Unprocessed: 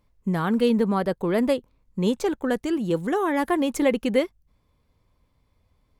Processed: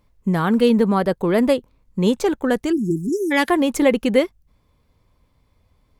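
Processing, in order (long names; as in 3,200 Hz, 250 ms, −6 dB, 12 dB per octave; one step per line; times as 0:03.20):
0:03.09–0:03.50: meter weighting curve D
0:02.72–0:03.31: time-frequency box erased 410–5,000 Hz
level +5 dB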